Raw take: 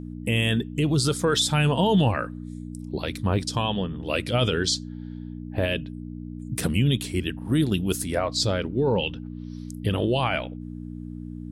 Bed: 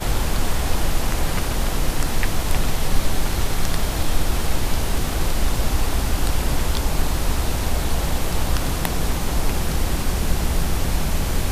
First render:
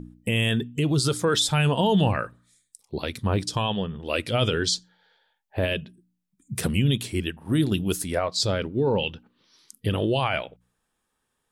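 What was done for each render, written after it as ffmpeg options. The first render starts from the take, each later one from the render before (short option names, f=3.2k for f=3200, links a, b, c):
-af "bandreject=f=60:t=h:w=4,bandreject=f=120:t=h:w=4,bandreject=f=180:t=h:w=4,bandreject=f=240:t=h:w=4,bandreject=f=300:t=h:w=4"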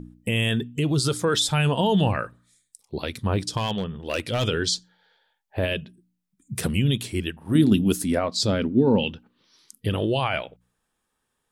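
-filter_complex "[0:a]asettb=1/sr,asplit=3[a][b][c];[a]atrim=end=3.574[d];[b]atrim=start=3.57:end=4.45,asetpts=PTS-STARTPTS,afade=t=in:d=0.004:c=qsin,afade=t=out:st=0.876:d=0.004:c=qsin,asoftclip=type=hard:threshold=-19.5dB[e];[c]atrim=start=4.446[f];[d][e]acrossfade=d=0.004:c1=hsin:c2=qsin[g];[g][f]acrossfade=d=0.004:c1=qsin:c2=hsin,asettb=1/sr,asplit=3[h][i][j];[h]atrim=end=7.554[k];[i]atrim=start=7.55:end=9.14,asetpts=PTS-STARTPTS,afade=t=in:d=0.004:c=qsin,afade=t=out:st=1.586:d=0.004:c=qsin,equalizer=f=240:w=2.4:g=13[l];[j]atrim=start=9.136[m];[k][l]acrossfade=d=0.004:c1=hsin:c2=qsin[n];[n][m]acrossfade=d=0.004:c1=qsin:c2=hsin"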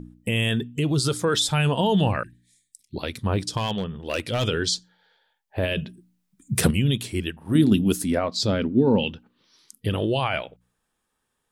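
-filter_complex "[0:a]asettb=1/sr,asplit=3[a][b][c];[a]atrim=end=2.234[d];[b]atrim=start=2.23:end=2.96,asetpts=PTS-STARTPTS,afade=t=in:d=0.004:c=qsin,afade=t=out:st=0.726:d=0.004:c=qsin,asuperstop=centerf=780:order=20:qfactor=0.57[e];[c]atrim=start=2.956[f];[d][e]acrossfade=d=0.004:c1=hsin:c2=qsin[g];[g][f]acrossfade=d=0.004:c1=qsin:c2=hsin,asettb=1/sr,asplit=3[h][i][j];[h]atrim=end=5.774[k];[i]atrim=start=5.77:end=6.71,asetpts=PTS-STARTPTS,afade=t=in:d=0.004:c=qsin,afade=t=out:st=0.936:d=0.004:c=qsin,acontrast=83[l];[j]atrim=start=6.706[m];[k][l]acrossfade=d=0.004:c1=hsin:c2=qsin[n];[n][m]acrossfade=d=0.004:c1=qsin:c2=hsin,asettb=1/sr,asplit=3[o][p][q];[o]atrim=end=8.104[r];[p]atrim=start=8.1:end=8.74,asetpts=PTS-STARTPTS,afade=t=in:d=0.004:c=qsin,afade=t=out:st=0.636:d=0.004:c=qsin,equalizer=f=9.1k:t=o:w=0.77:g=-6[s];[q]atrim=start=8.736[t];[r][s]acrossfade=d=0.004:c1=hsin:c2=qsin[u];[u][t]acrossfade=d=0.004:c1=qsin:c2=hsin"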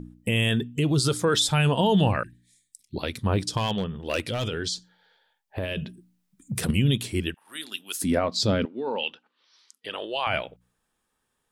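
-filter_complex "[0:a]asplit=3[a][b][c];[a]afade=t=out:st=4.23:d=0.02[d];[b]acompressor=threshold=-25dB:ratio=6:attack=3.2:release=140:knee=1:detection=peak,afade=t=in:st=4.23:d=0.02,afade=t=out:st=6.68:d=0.02[e];[c]afade=t=in:st=6.68:d=0.02[f];[d][e][f]amix=inputs=3:normalize=0,asettb=1/sr,asplit=3[g][h][i];[g]atrim=end=7.344[j];[h]atrim=start=7.34:end=8.02,asetpts=PTS-STARTPTS,afade=t=in:d=0.004:c=qsin,afade=t=out:st=0.676:d=0.004:c=qsin,highpass=1.5k[k];[i]atrim=start=8.016[l];[j][k]acrossfade=d=0.004:c1=hsin:c2=qsin[m];[m][l]acrossfade=d=0.004:c1=qsin:c2=hsin,asettb=1/sr,asplit=3[n][o][p];[n]atrim=end=8.654[q];[o]atrim=start=8.65:end=10.27,asetpts=PTS-STARTPTS,afade=t=in:d=0.004:c=qsin,afade=t=out:st=1.616:d=0.004:c=qsin,highpass=700,lowpass=5.8k[r];[p]atrim=start=10.266[s];[q][r]acrossfade=d=0.004:c1=hsin:c2=qsin[t];[t][s]acrossfade=d=0.004:c1=qsin:c2=hsin"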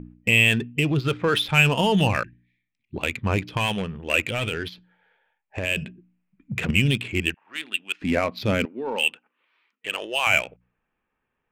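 -af "lowpass=f=2.5k:t=q:w=4.4,adynamicsmooth=sensitivity=4:basefreq=1.9k"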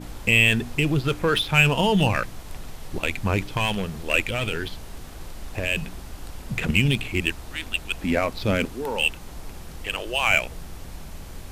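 -filter_complex "[1:a]volume=-17dB[a];[0:a][a]amix=inputs=2:normalize=0"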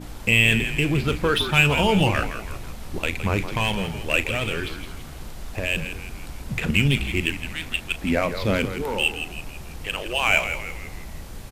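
-filter_complex "[0:a]asplit=2[a][b];[b]adelay=36,volume=-14dB[c];[a][c]amix=inputs=2:normalize=0,asplit=6[d][e][f][g][h][i];[e]adelay=165,afreqshift=-78,volume=-9.5dB[j];[f]adelay=330,afreqshift=-156,volume=-15.9dB[k];[g]adelay=495,afreqshift=-234,volume=-22.3dB[l];[h]adelay=660,afreqshift=-312,volume=-28.6dB[m];[i]adelay=825,afreqshift=-390,volume=-35dB[n];[d][j][k][l][m][n]amix=inputs=6:normalize=0"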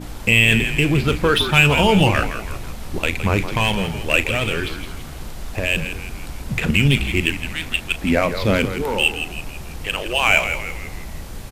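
-af "volume=4.5dB,alimiter=limit=-3dB:level=0:latency=1"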